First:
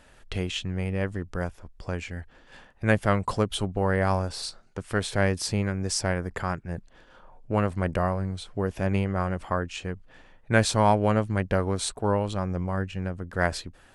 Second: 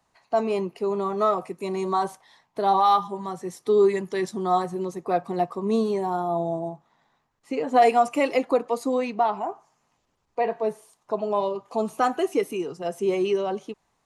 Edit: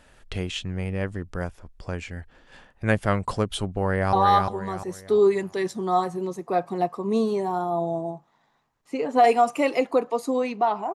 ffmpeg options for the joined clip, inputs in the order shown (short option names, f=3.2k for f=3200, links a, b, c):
-filter_complex "[0:a]apad=whole_dur=10.94,atrim=end=10.94,atrim=end=4.132[a];[1:a]atrim=start=2.708:end=9.52[b];[a][b]acrossfade=d=0.004:c1=hsin:c2=hsin,asplit=2[c][d];[d]afade=t=in:st=3.79:d=0.01,afade=t=out:st=4.13:d=0.01,aecho=0:1:350|700|1050|1400|1750:0.668344|0.23392|0.0818721|0.0286552|0.0100293[e];[c][e]amix=inputs=2:normalize=0"